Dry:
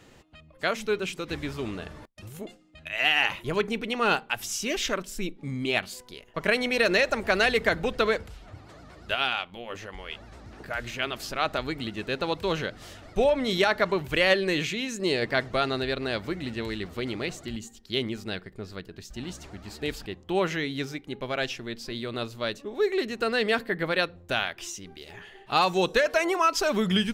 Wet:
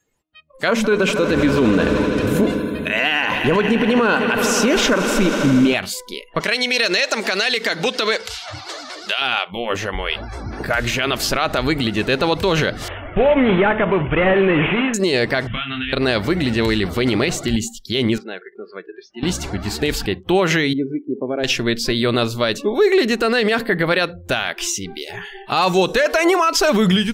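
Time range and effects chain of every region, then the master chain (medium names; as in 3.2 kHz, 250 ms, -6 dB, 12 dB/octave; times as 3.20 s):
0.68–5.74 s: treble shelf 9.5 kHz -4 dB + small resonant body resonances 260/500/1000/1500 Hz, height 11 dB, ringing for 25 ms + echo with a slow build-up 80 ms, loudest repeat 5, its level -18 dB
6.40–9.22 s: high-pass 210 Hz 6 dB/octave + peaking EQ 4.8 kHz +12 dB 1.9 oct + compression 2:1, threshold -40 dBFS
12.88–14.94 s: CVSD coder 16 kbps + de-hum 109.1 Hz, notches 10
15.47–15.93 s: FFT filter 240 Hz 0 dB, 370 Hz -23 dB, 900 Hz -11 dB, 1.4 kHz -2 dB, 2.1 kHz +1 dB, 3.2 kHz +11 dB, 4.5 kHz -29 dB + compression 8:1, threshold -35 dBFS + doubling 27 ms -5 dB
18.18–19.23 s: compression 2:1, threshold -45 dBFS + band-pass 310–2400 Hz
20.73–21.44 s: band-pass filter 310 Hz, Q 1.5 + compression 1.5:1, threshold -39 dBFS
whole clip: spectral noise reduction 26 dB; level rider gain up to 11.5 dB; peak limiter -13 dBFS; trim +6 dB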